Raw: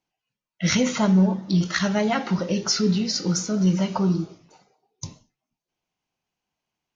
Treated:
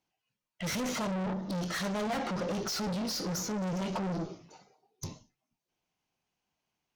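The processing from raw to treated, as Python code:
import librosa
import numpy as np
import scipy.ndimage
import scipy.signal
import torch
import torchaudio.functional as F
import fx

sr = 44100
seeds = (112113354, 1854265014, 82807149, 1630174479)

y = fx.tube_stage(x, sr, drive_db=33.0, bias=0.3)
y = fx.dynamic_eq(y, sr, hz=620.0, q=0.7, threshold_db=-51.0, ratio=4.0, max_db=4)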